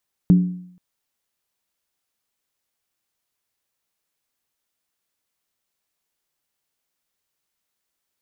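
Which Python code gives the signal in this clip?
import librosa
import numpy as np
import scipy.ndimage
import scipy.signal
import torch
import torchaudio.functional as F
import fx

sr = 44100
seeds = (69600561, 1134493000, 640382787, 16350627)

y = fx.strike_skin(sr, length_s=0.48, level_db=-7, hz=180.0, decay_s=0.66, tilt_db=12, modes=5)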